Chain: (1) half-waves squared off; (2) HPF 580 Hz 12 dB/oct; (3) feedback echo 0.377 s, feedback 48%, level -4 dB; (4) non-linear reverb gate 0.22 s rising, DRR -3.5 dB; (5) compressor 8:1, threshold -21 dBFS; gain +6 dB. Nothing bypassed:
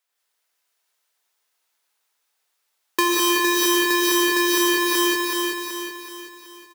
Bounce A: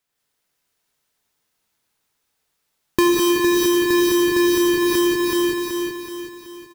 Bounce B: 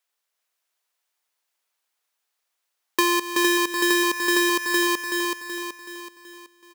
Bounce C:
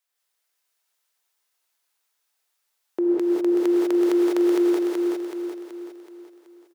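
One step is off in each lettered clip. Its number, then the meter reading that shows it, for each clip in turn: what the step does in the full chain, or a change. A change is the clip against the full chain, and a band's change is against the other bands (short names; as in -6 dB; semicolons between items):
2, 250 Hz band +9.0 dB; 4, momentary loudness spread change +2 LU; 1, distortion -6 dB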